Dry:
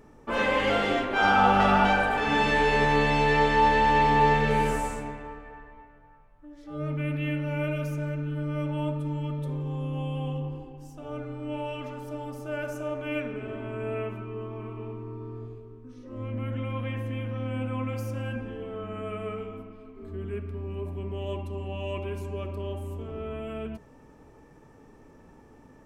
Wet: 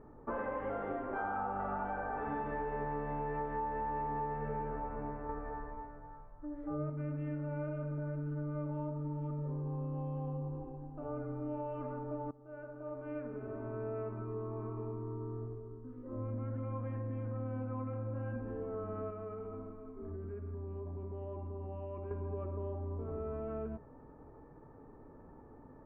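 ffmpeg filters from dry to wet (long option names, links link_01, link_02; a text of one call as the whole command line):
ffmpeg -i in.wav -filter_complex "[0:a]asettb=1/sr,asplit=3[link_01][link_02][link_03];[link_01]atrim=end=5.294[link_04];[link_02]atrim=start=5.29:end=6.9,asetpts=PTS-STARTPTS,afade=type=in:duration=0.004:curve=qsin,afade=type=out:start_time=1.606:duration=0.004:curve=qsin,acontrast=53[link_05];[link_03]atrim=start=6.896[link_06];[link_04][link_05]acrossfade=duration=0.004:curve1=hsin:curve2=qsin[link_07];[link_07][link_06]acrossfade=duration=0.004:curve1=qsin:curve2=hsin,asettb=1/sr,asplit=3[link_08][link_09][link_10];[link_08]atrim=end=19.104[link_11];[link_09]atrim=start=19.1:end=22.11,asetpts=PTS-STARTPTS,afade=type=in:duration=0.004:curve=qsin,afade=type=out:start_time=3.006:duration=0.004:curve=qsin,acompressor=threshold=-37dB:ratio=6:attack=3.2:release=140:knee=1:detection=peak[link_12];[link_10]atrim=start=22.106[link_13];[link_11][link_12]acrossfade=duration=0.004:curve1=hsin:curve2=qsin[link_14];[link_14][link_13]acrossfade=duration=0.004:curve1=qsin:curve2=hsin,asplit=2[link_15][link_16];[link_15]atrim=end=12.31,asetpts=PTS-STARTPTS,afade=type=out:start_time=12.306:duration=0.004:curve=hsin:silence=0.105925[link_17];[link_16]atrim=start=12.31,asetpts=PTS-STARTPTS,afade=type=in:duration=2.15:silence=0.105925[link_18];[link_17][link_18]concat=n=2:v=0:a=1,lowpass=frequency=1400:width=0.5412,lowpass=frequency=1400:width=1.3066,equalizer=frequency=200:width_type=o:width=0.33:gain=-4.5,acompressor=threshold=-34dB:ratio=6,volume=-1.5dB" out.wav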